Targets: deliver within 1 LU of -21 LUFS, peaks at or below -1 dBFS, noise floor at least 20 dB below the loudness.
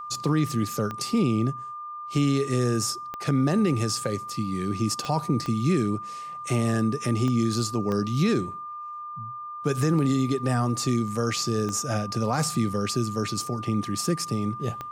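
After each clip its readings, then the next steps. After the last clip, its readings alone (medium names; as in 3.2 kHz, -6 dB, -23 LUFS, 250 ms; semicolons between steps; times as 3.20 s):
clicks found 8; steady tone 1.2 kHz; tone level -34 dBFS; loudness -26.0 LUFS; peak level -12.5 dBFS; loudness target -21.0 LUFS
-> de-click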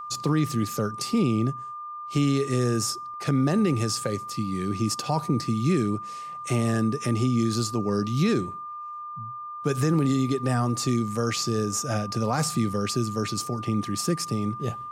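clicks found 0; steady tone 1.2 kHz; tone level -34 dBFS
-> band-stop 1.2 kHz, Q 30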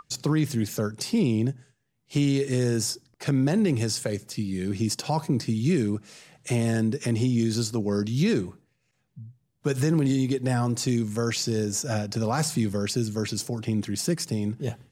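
steady tone not found; loudness -26.5 LUFS; peak level -13.0 dBFS; loudness target -21.0 LUFS
-> trim +5.5 dB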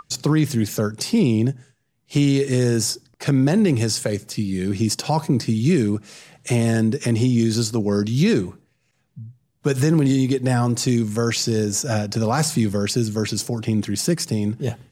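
loudness -21.0 LUFS; peak level -7.5 dBFS; noise floor -68 dBFS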